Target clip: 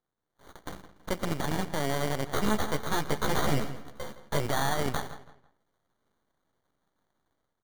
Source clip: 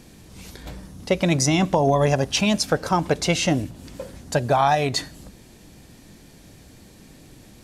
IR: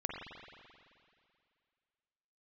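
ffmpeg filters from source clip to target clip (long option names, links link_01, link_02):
-filter_complex "[0:a]highpass=frequency=110:poles=1,agate=range=-34dB:threshold=-39dB:ratio=16:detection=peak,aemphasis=mode=production:type=75fm,dynaudnorm=framelen=190:gausssize=5:maxgain=10dB,alimiter=limit=-9.5dB:level=0:latency=1:release=28,acrusher=samples=17:mix=1:aa=0.000001,aeval=exprs='max(val(0),0)':channel_layout=same,acrusher=bits=3:mode=log:mix=0:aa=0.000001,asettb=1/sr,asplit=3[link_01][link_02][link_03];[link_01]atrim=end=2.344[link_04];[link_02]atrim=start=2.34:end=4.46,asetpts=PTS-STARTPTS,afade=type=in:duration=0.004:curve=qsin,afade=type=out:start_time=2.116:duration=0.004:curve=qsin,asplit=2[link_05][link_06];[link_06]adelay=14,volume=-2dB[link_07];[link_05][link_07]amix=inputs=2:normalize=0,atrim=end_sample=93492[link_08];[link_03]atrim=start=4.456[link_09];[link_04][link_08]acrossfade=duration=0.004:curve1=hsin:curve2=qsin[link_10];[link_10][link_09]acrossfade=duration=0.004:curve1=qsin:curve2=hsin,asplit=2[link_11][link_12];[link_12]adelay=165,lowpass=frequency=3900:poles=1,volume=-13.5dB,asplit=2[link_13][link_14];[link_14]adelay=165,lowpass=frequency=3900:poles=1,volume=0.31,asplit=2[link_15][link_16];[link_16]adelay=165,lowpass=frequency=3900:poles=1,volume=0.31[link_17];[link_11][link_13][link_15][link_17]amix=inputs=4:normalize=0,volume=-6.5dB"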